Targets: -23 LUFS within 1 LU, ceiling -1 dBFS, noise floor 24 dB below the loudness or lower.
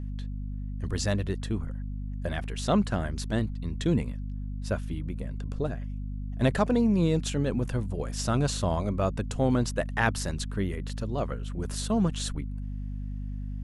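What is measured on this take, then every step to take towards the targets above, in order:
hum 50 Hz; highest harmonic 250 Hz; hum level -31 dBFS; loudness -30.0 LUFS; peak level -9.0 dBFS; loudness target -23.0 LUFS
-> de-hum 50 Hz, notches 5; trim +7 dB

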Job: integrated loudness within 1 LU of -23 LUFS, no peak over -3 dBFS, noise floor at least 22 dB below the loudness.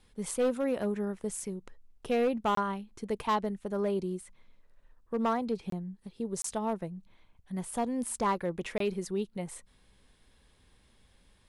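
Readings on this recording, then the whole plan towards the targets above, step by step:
clipped samples 0.8%; clipping level -22.5 dBFS; dropouts 4; longest dropout 23 ms; loudness -33.0 LUFS; peak level -22.5 dBFS; loudness target -23.0 LUFS
-> clip repair -22.5 dBFS; interpolate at 2.55/5.70/6.42/8.78 s, 23 ms; trim +10 dB

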